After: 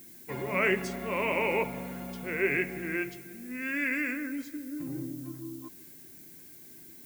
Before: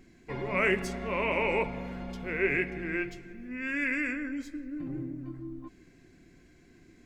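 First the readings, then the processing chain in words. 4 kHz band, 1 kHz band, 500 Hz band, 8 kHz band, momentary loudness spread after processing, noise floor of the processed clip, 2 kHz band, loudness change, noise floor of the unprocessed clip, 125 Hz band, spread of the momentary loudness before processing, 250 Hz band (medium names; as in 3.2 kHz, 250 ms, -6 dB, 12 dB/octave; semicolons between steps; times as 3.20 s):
0.0 dB, 0.0 dB, 0.0 dB, no reading, 20 LU, -50 dBFS, 0.0 dB, 0.0 dB, -59 dBFS, -1.0 dB, 14 LU, 0.0 dB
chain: high-pass 100 Hz 12 dB/octave; added noise violet -51 dBFS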